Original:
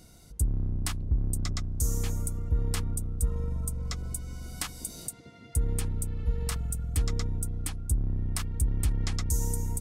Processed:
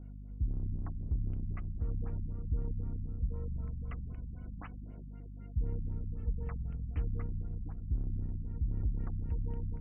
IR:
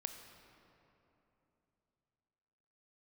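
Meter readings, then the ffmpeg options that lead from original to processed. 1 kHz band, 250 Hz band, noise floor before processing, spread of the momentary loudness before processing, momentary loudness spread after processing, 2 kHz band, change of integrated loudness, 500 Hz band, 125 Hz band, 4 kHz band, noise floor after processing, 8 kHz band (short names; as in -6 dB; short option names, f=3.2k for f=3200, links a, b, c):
-11.0 dB, -5.5 dB, -52 dBFS, 7 LU, 9 LU, -15.0 dB, -7.0 dB, -8.5 dB, -6.0 dB, under -30 dB, -46 dBFS, under -40 dB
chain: -af "aeval=exprs='val(0)+0.0126*(sin(2*PI*50*n/s)+sin(2*PI*2*50*n/s)/2+sin(2*PI*3*50*n/s)/3+sin(2*PI*4*50*n/s)/4+sin(2*PI*5*50*n/s)/5)':c=same,adynamicsmooth=sensitivity=3.5:basefreq=2k,afftfilt=real='re*lt(b*sr/1024,240*pow(3200/240,0.5+0.5*sin(2*PI*3.9*pts/sr)))':imag='im*lt(b*sr/1024,240*pow(3200/240,0.5+0.5*sin(2*PI*3.9*pts/sr)))':win_size=1024:overlap=0.75,volume=-6.5dB"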